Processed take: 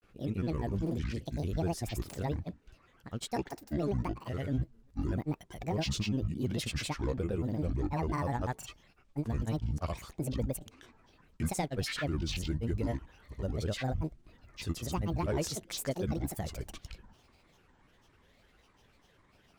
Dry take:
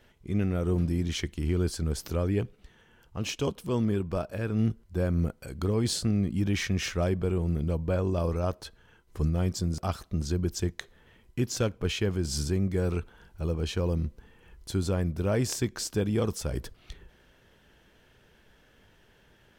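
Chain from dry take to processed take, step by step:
soft clipping −17.5 dBFS, distortion −20 dB
granular cloud, pitch spread up and down by 12 semitones
level −3 dB

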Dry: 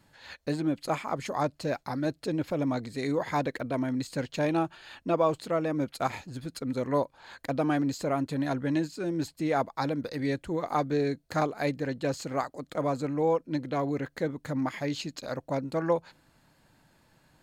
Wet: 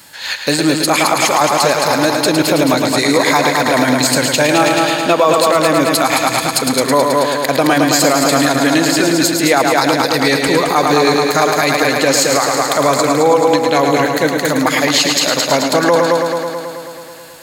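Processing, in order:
spectral tilt +3.5 dB per octave
on a send: echo machine with several playback heads 108 ms, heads first and second, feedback 65%, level −8 dB
on the sum: boost into a limiter +21 dB
level −1 dB

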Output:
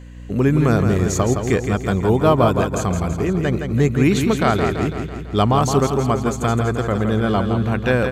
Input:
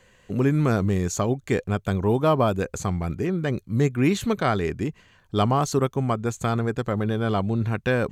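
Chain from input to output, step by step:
mains hum 60 Hz, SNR 19 dB
repeating echo 166 ms, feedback 57%, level −6.5 dB
level +4.5 dB

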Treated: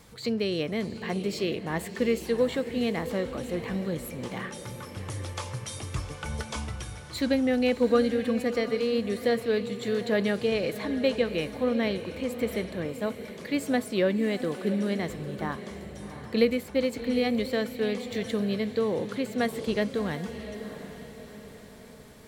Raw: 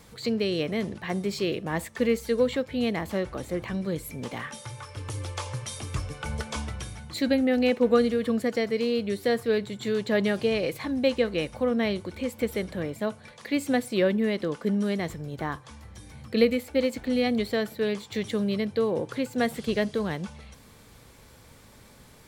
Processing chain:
feedback delay with all-pass diffusion 713 ms, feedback 47%, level −11 dB
0:07.89–0:08.34: steady tone 1,600 Hz −48 dBFS
level −1.5 dB

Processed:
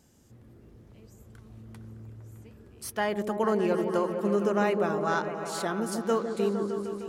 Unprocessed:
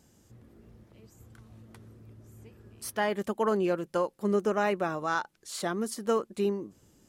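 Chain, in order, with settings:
echo whose low-pass opens from repeat to repeat 153 ms, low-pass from 400 Hz, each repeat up 1 octave, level −3 dB

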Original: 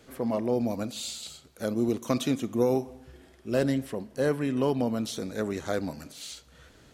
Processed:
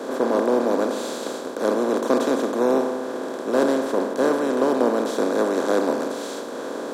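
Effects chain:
compressor on every frequency bin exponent 0.2
high-pass filter 230 Hz 24 dB per octave
high shelf with overshoot 1,800 Hz −6.5 dB, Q 1.5
multiband upward and downward expander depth 100%

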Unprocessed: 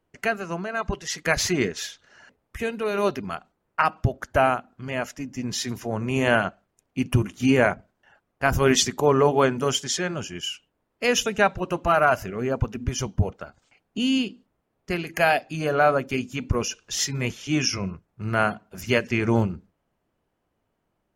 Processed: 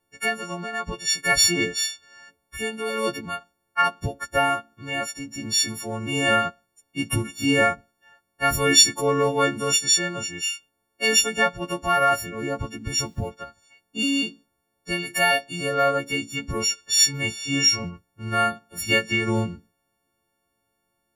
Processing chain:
every partial snapped to a pitch grid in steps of 4 semitones
0:12.88–0:13.29: bit-depth reduction 10 bits, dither none
dynamic equaliser 900 Hz, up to −4 dB, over −35 dBFS, Q 3.8
level −2.5 dB

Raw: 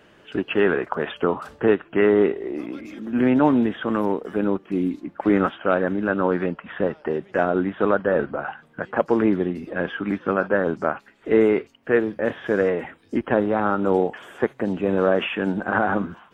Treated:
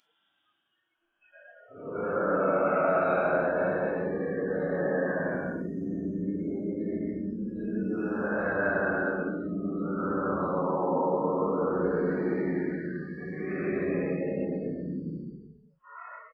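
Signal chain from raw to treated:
extreme stretch with random phases 15×, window 0.05 s, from 0:05.52
single-tap delay 389 ms −20 dB
noise reduction from a noise print of the clip's start 28 dB
level −7.5 dB

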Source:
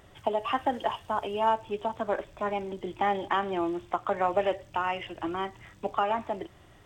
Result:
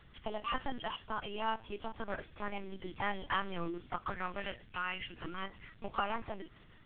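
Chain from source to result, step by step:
flat-topped bell 590 Hz −9.5 dB, from 0:04.09 −16 dB, from 0:05.42 −8 dB
linear-prediction vocoder at 8 kHz pitch kept
level −2.5 dB

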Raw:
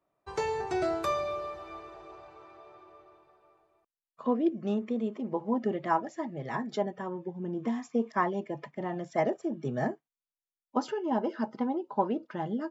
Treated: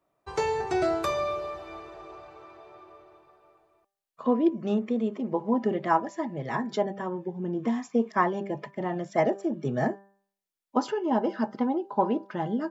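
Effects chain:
hum removal 197.4 Hz, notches 9
level +4 dB

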